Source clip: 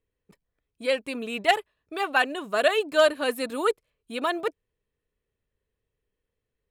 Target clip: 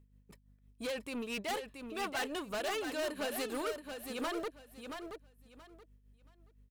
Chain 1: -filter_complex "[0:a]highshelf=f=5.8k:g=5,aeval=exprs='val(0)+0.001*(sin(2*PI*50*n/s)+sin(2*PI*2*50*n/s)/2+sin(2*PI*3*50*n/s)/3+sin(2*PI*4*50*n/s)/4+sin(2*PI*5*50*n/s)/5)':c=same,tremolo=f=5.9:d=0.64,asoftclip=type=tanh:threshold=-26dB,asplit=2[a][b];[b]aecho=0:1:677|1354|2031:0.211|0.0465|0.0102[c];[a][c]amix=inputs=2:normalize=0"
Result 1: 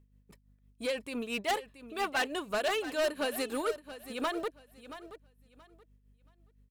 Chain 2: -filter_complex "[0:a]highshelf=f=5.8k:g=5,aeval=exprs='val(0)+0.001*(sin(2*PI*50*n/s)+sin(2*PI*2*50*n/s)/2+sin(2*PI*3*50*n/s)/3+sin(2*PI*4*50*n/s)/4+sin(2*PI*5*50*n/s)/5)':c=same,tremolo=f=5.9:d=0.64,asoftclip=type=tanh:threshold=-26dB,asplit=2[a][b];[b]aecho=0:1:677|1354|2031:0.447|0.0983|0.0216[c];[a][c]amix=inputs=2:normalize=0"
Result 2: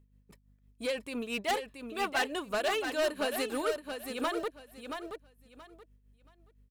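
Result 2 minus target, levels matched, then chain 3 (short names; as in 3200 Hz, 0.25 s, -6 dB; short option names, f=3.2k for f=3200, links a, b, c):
soft clip: distortion -4 dB
-filter_complex "[0:a]highshelf=f=5.8k:g=5,aeval=exprs='val(0)+0.001*(sin(2*PI*50*n/s)+sin(2*PI*2*50*n/s)/2+sin(2*PI*3*50*n/s)/3+sin(2*PI*4*50*n/s)/4+sin(2*PI*5*50*n/s)/5)':c=same,tremolo=f=5.9:d=0.64,asoftclip=type=tanh:threshold=-34dB,asplit=2[a][b];[b]aecho=0:1:677|1354|2031:0.447|0.0983|0.0216[c];[a][c]amix=inputs=2:normalize=0"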